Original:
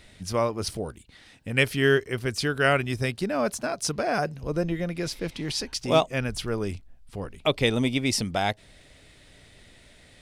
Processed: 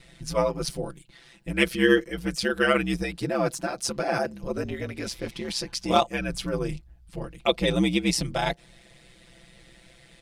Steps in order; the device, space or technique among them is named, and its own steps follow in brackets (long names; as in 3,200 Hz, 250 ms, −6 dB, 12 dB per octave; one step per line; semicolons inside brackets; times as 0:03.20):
ring-modulated robot voice (ring modulation 63 Hz; comb filter 5.9 ms, depth 93%)